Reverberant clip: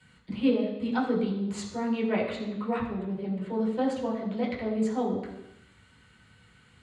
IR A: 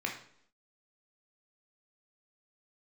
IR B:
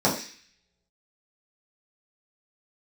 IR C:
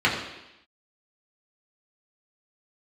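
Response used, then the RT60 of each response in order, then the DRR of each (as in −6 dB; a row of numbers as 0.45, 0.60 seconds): C; 0.65, 0.40, 0.90 seconds; 0.5, −7.0, −5.5 decibels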